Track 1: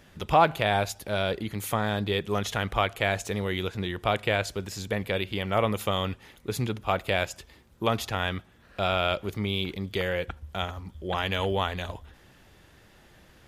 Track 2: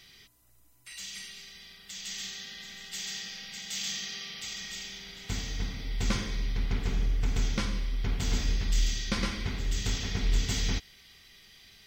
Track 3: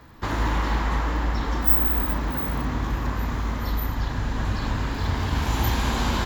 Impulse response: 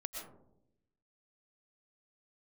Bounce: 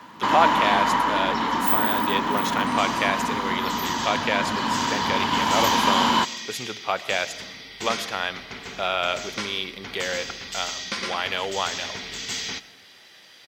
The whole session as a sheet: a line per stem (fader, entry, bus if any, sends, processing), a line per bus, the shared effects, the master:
+0.5 dB, 0.00 s, send -11.5 dB, none
+2.5 dB, 1.80 s, send -11.5 dB, none
+2.5 dB, 0.00 s, send -16 dB, small resonant body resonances 210/960/3000 Hz, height 11 dB, ringing for 25 ms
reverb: on, RT60 0.80 s, pre-delay 80 ms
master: frequency weighting A

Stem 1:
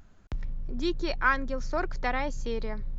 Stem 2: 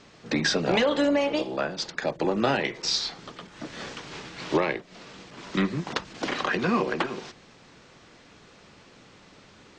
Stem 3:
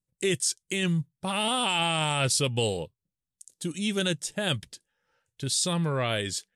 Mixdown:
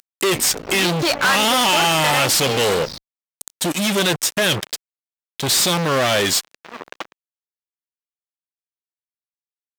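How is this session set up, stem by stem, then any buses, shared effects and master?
+0.5 dB, 0.00 s, no send, tilt EQ +2 dB/octave
-17.5 dB, 0.00 s, no send, treble shelf 2.1 kHz -5 dB; auto duck -8 dB, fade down 0.75 s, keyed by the third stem
+1.5 dB, 0.00 s, no send, none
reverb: none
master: fuzz box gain 37 dB, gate -42 dBFS; high-pass 370 Hz 6 dB/octave; decimation joined by straight lines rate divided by 2×

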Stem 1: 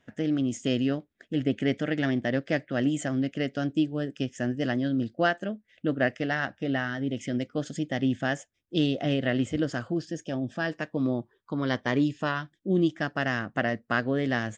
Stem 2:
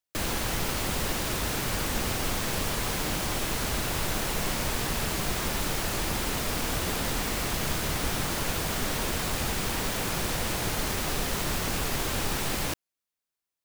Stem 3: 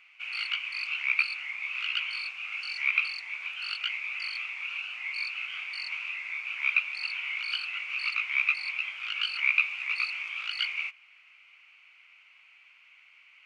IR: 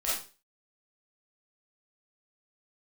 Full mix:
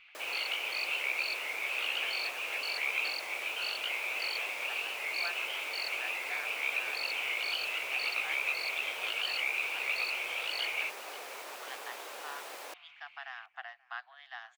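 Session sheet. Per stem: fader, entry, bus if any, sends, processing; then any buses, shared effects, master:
-10.5 dB, 0.00 s, bus A, no send, echo send -23 dB, steep high-pass 730 Hz 96 dB/octave; treble shelf 4.3 kHz -11 dB
-8.5 dB, 0.00 s, no bus, no send, no echo send, high-pass 480 Hz 24 dB/octave
0.0 dB, 0.00 s, bus A, no send, echo send -15 dB, bass shelf 110 Hz +11.5 dB
bus A: 0.0 dB, peaking EQ 3.7 kHz +12.5 dB 0.74 oct; peak limiter -17.5 dBFS, peak gain reduction 11 dB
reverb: none
echo: feedback delay 531 ms, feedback 44%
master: treble shelf 2 kHz -8.5 dB

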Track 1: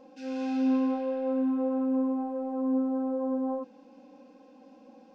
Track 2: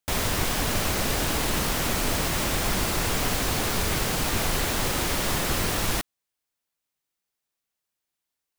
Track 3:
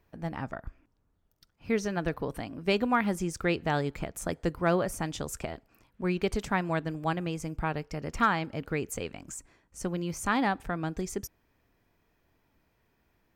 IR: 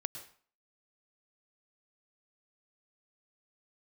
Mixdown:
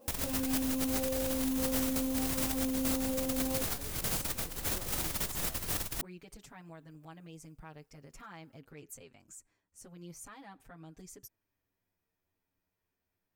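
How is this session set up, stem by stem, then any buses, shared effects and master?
-3.5 dB, 0.00 s, bus A, no send, peaking EQ 380 Hz +7.5 dB 0.88 oct; modulation noise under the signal 19 dB
-13.5 dB, 0.00 s, no bus, no send, bass shelf 120 Hz +6.5 dB; compressor with a negative ratio -25 dBFS, ratio -0.5
-13.5 dB, 0.00 s, bus A, no send, peak limiter -24.5 dBFS, peak gain reduction 10.5 dB
bus A: 0.0 dB, touch-sensitive flanger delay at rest 11 ms, full sweep at -27 dBFS; peak limiter -28.5 dBFS, peak gain reduction 10 dB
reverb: none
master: treble shelf 6.4 kHz +11.5 dB

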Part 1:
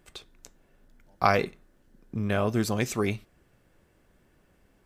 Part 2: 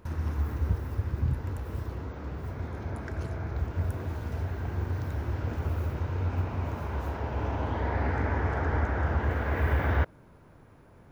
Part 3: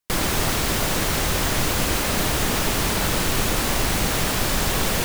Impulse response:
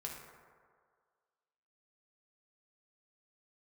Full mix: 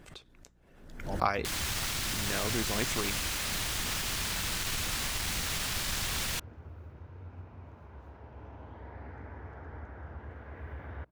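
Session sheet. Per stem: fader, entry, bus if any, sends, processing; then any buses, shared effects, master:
-5.0 dB, 0.00 s, no send, harmonic-percussive split harmonic -9 dB; swell ahead of each attack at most 63 dB/s
-17.0 dB, 1.00 s, no send, treble shelf 5.4 kHz -6 dB
+1.5 dB, 1.35 s, no send, one-sided wavefolder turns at -18 dBFS; amplifier tone stack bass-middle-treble 5-5-5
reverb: none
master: treble shelf 8.8 kHz -8 dB; hum 60 Hz, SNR 32 dB

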